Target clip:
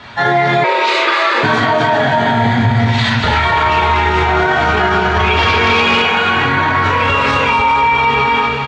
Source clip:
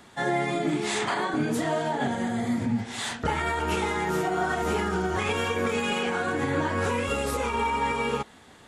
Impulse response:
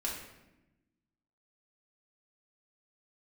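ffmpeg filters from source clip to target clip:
-filter_complex "[0:a]equalizer=f=370:w=1.8:g=-13.5,aecho=1:1:240|396|497.4|563.3|606.2:0.631|0.398|0.251|0.158|0.1[a];[1:a]atrim=start_sample=2205,atrim=end_sample=4410,asetrate=70560,aresample=44100[b];[a][b]afir=irnorm=-1:irlink=0,asplit=3[c][d][e];[c]afade=t=out:st=0.63:d=0.02[f];[d]afreqshift=230,afade=t=in:st=0.63:d=0.02,afade=t=out:st=1.42:d=0.02[g];[e]afade=t=in:st=1.42:d=0.02[h];[f][g][h]amix=inputs=3:normalize=0,asettb=1/sr,asplit=3[i][j][k];[i]atrim=end=5.364[l];[j]atrim=start=5.36:end=6.02,asetpts=PTS-STARTPTS,afade=t=in:d=0.004:c=qsin,afade=t=out:st=0.656:d=0.004:c=qsin,aeval=exprs='0.0562*(abs(mod(val(0)/0.0562+3,4)-2)-1)':c=same[m];[k]atrim=start=6.016[n];[l][m]acrossfade=d=0.004:c1=hsin:c2=qsin[o];[o][n]acrossfade=d=0.004:c1=qsin:c2=hsin,highpass=60,asettb=1/sr,asplit=3[p][q][r];[p]atrim=end=3.454[s];[q]atrim=start=3.45:end=3.97,asetpts=PTS-STARTPTS,afade=t=in:d=0.004:c=qsin,afade=t=out:st=0.516:d=0.004:c=qsin,aeval=exprs='val(0)+0.0158*sin(2*PI*1100*n/s)':c=same[t];[r]atrim=start=3.966[u];[s][t]acrossfade=d=0.004:c1=hsin:c2=qsin[v];[v][u]acrossfade=d=0.004:c1=qsin:c2=hsin,lowpass=f=4.5k:w=0.5412,lowpass=f=4.5k:w=1.3066,alimiter=level_in=25.5dB:limit=-1dB:release=50:level=0:latency=1,volume=-3.5dB"

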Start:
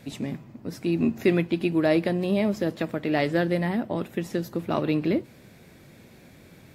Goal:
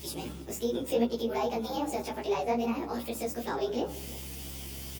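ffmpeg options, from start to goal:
-filter_complex "[0:a]afftfilt=real='re':imag='-im':win_size=2048:overlap=0.75,bandreject=f=54.73:t=h:w=4,bandreject=f=109.46:t=h:w=4,bandreject=f=164.19:t=h:w=4,bandreject=f=218.92:t=h:w=4,bandreject=f=273.65:t=h:w=4,bandreject=f=328.38:t=h:w=4,bandreject=f=383.11:t=h:w=4,bandreject=f=437.84:t=h:w=4,bandreject=f=492.57:t=h:w=4,bandreject=f=547.3:t=h:w=4,bandreject=f=602.03:t=h:w=4,bandreject=f=656.76:t=h:w=4,bandreject=f=711.49:t=h:w=4,bandreject=f=766.22:t=h:w=4,bandreject=f=820.95:t=h:w=4,bandreject=f=875.68:t=h:w=4,bandreject=f=930.41:t=h:w=4,bandreject=f=985.14:t=h:w=4,bandreject=f=1.03987k:t=h:w=4,bandreject=f=1.0946k:t=h:w=4,acrossover=split=170|1000[a][b][c];[c]acompressor=threshold=-51dB:ratio=12[d];[a][b][d]amix=inputs=3:normalize=0,crystalizer=i=9:c=0,flanger=delay=6.3:depth=9.3:regen=-6:speed=1.9:shape=triangular,aeval=exprs='val(0)+0.00316*(sin(2*PI*50*n/s)+sin(2*PI*2*50*n/s)/2+sin(2*PI*3*50*n/s)/3+sin(2*PI*4*50*n/s)/4+sin(2*PI*5*50*n/s)/5)':c=same,areverse,acompressor=mode=upward:threshold=-32dB:ratio=2.5,areverse,asplit=2[e][f];[f]adelay=443.1,volume=-18dB,highshelf=f=4k:g=-9.97[g];[e][g]amix=inputs=2:normalize=0,asetrate=59535,aresample=44100"

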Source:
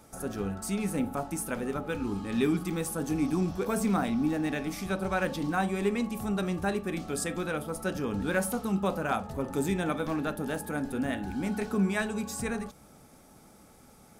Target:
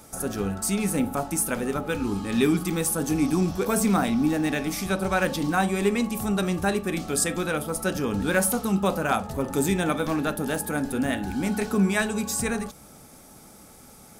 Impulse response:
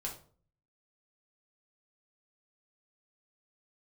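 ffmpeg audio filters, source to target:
-af "highshelf=f=4k:g=6.5,volume=5dB"

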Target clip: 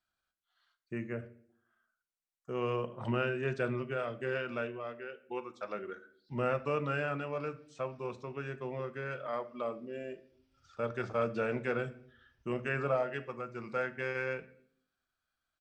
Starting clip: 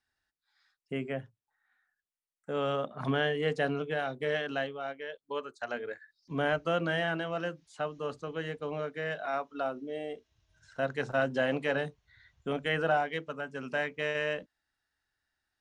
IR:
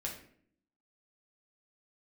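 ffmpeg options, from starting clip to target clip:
-filter_complex "[0:a]asetrate=38170,aresample=44100,atempo=1.15535,asplit=2[a][b];[1:a]atrim=start_sample=2205[c];[b][c]afir=irnorm=-1:irlink=0,volume=-6.5dB[d];[a][d]amix=inputs=2:normalize=0,volume=-6dB"

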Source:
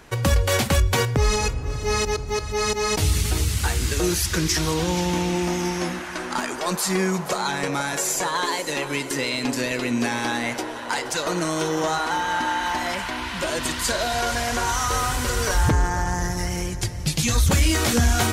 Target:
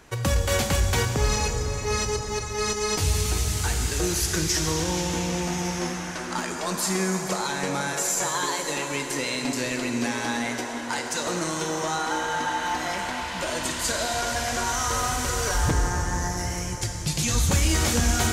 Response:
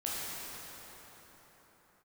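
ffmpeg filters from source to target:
-filter_complex "[0:a]asplit=2[a][b];[b]equalizer=f=6.8k:t=o:w=0.89:g=9[c];[1:a]atrim=start_sample=2205[d];[c][d]afir=irnorm=-1:irlink=0,volume=-7.5dB[e];[a][e]amix=inputs=2:normalize=0,volume=-6.5dB"

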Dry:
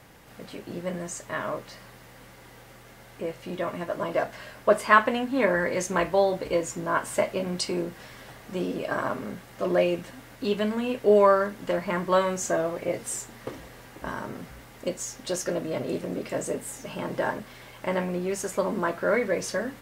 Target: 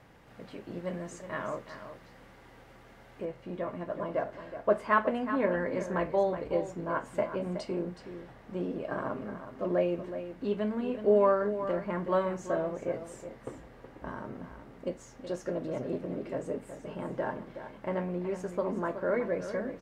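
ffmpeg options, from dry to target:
-af "asetnsamples=n=441:p=0,asendcmd='3.25 lowpass f 1000',lowpass=f=2.3k:p=1,aecho=1:1:371:0.299,volume=-4dB"

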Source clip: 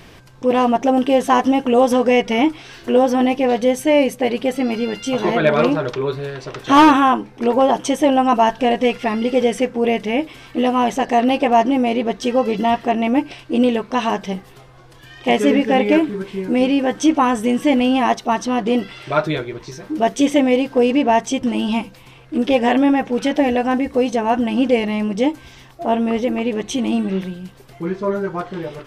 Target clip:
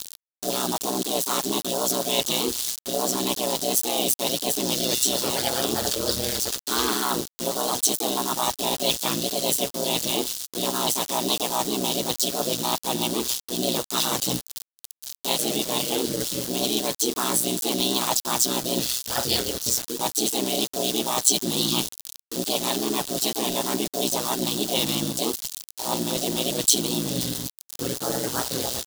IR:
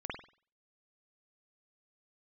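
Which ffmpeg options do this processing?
-filter_complex "[0:a]areverse,acompressor=threshold=-22dB:ratio=10,areverse,asplit=4[a][b][c][d];[b]asetrate=33038,aresample=44100,atempo=1.33484,volume=-15dB[e];[c]asetrate=55563,aresample=44100,atempo=0.793701,volume=-1dB[f];[d]asetrate=58866,aresample=44100,atempo=0.749154,volume=-4dB[g];[a][e][f][g]amix=inputs=4:normalize=0,aeval=exprs='val(0)*gte(abs(val(0)),0.0266)':c=same,aeval=exprs='val(0)*sin(2*PI*62*n/s)':c=same,aexciter=amount=9.1:drive=4:freq=3.3k,volume=-3dB"

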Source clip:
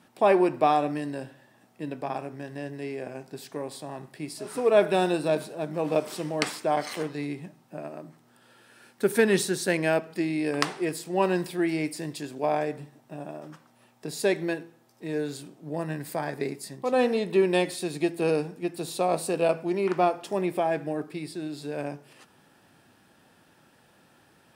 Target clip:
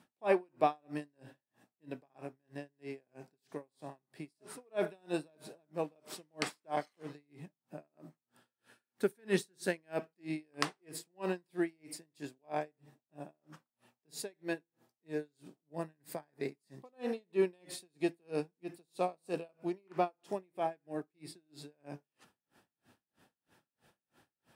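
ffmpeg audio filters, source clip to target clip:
-af "aeval=exprs='val(0)*pow(10,-39*(0.5-0.5*cos(2*PI*3.1*n/s))/20)':c=same,volume=-5.5dB"

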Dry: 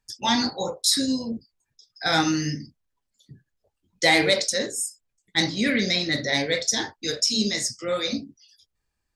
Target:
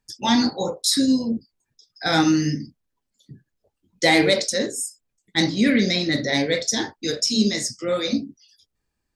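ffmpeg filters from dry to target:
-af "equalizer=f=260:t=o:w=1.9:g=6.5"

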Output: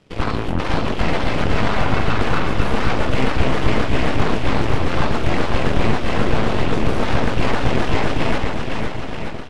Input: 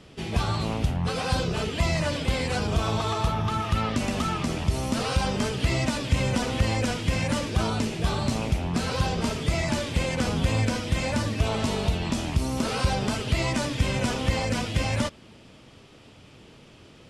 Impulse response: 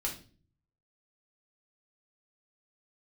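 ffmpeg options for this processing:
-filter_complex "[0:a]acrossover=split=3200[a][b];[b]acompressor=threshold=-50dB:ratio=4:attack=1:release=60[c];[a][c]amix=inputs=2:normalize=0,highshelf=f=3.5k:g=-4,atempo=1.8,aeval=exprs='0.237*(cos(1*acos(clip(val(0)/0.237,-1,1)))-cos(1*PI/2))+0.119*(cos(4*acos(clip(val(0)/0.237,-1,1)))-cos(4*PI/2))+0.015*(cos(7*acos(clip(val(0)/0.237,-1,1)))-cos(7*PI/2))+0.0596*(cos(8*acos(clip(val(0)/0.237,-1,1)))-cos(8*PI/2))':c=same,aecho=1:1:500|925|1286|1593|1854:0.631|0.398|0.251|0.158|0.1"

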